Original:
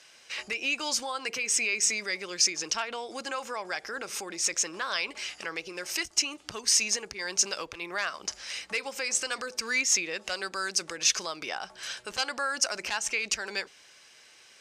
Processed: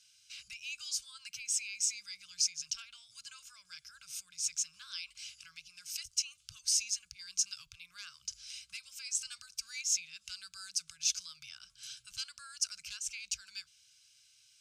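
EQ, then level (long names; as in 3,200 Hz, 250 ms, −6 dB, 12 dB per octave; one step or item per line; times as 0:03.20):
elliptic band-stop filter 130–1,700 Hz, stop band 40 dB
parametric band 340 Hz +5.5 dB 0.98 octaves
phaser with its sweep stopped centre 770 Hz, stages 4
−5.0 dB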